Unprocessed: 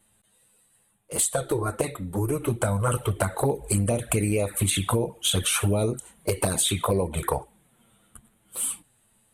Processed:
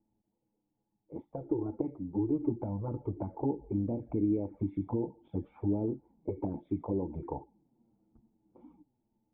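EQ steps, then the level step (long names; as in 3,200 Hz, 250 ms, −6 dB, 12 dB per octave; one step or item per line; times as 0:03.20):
formant resonators in series u
+2.5 dB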